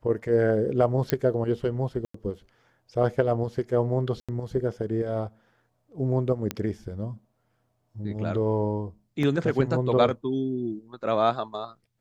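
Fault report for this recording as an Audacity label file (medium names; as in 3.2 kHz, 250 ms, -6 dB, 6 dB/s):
1.100000	1.100000	pop -8 dBFS
2.050000	2.140000	dropout 94 ms
4.200000	4.290000	dropout 86 ms
6.510000	6.510000	pop -12 dBFS
9.230000	9.230000	dropout 2.9 ms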